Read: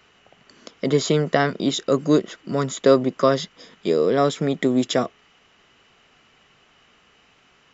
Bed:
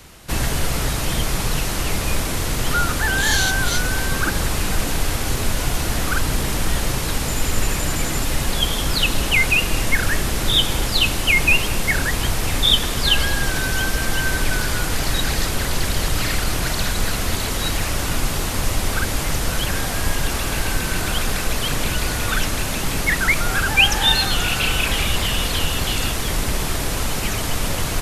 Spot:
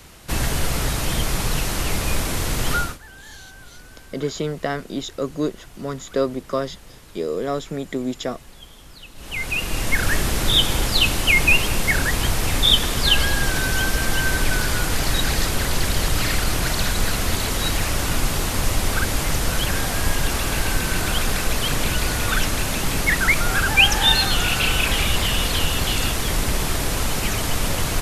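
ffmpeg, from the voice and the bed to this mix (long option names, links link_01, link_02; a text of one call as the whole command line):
ffmpeg -i stem1.wav -i stem2.wav -filter_complex "[0:a]adelay=3300,volume=-6dB[link_01];[1:a]volume=22.5dB,afade=type=out:start_time=2.74:duration=0.24:silence=0.0749894,afade=type=in:start_time=9.15:duration=0.98:silence=0.0668344[link_02];[link_01][link_02]amix=inputs=2:normalize=0" out.wav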